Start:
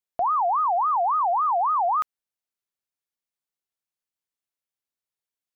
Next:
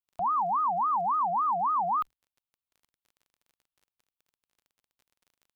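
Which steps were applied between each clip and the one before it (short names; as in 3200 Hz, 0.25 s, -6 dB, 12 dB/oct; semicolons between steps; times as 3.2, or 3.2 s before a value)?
octaver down 2 oct, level -2 dB; fixed phaser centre 1800 Hz, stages 6; crackle 26/s -47 dBFS; gain -3.5 dB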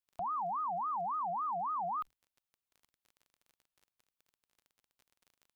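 limiter -32 dBFS, peak gain reduction 10 dB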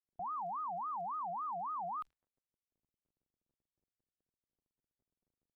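low-pass opened by the level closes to 350 Hz, open at -33.5 dBFS; gain -4 dB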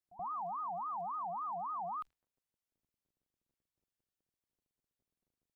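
pre-echo 79 ms -17 dB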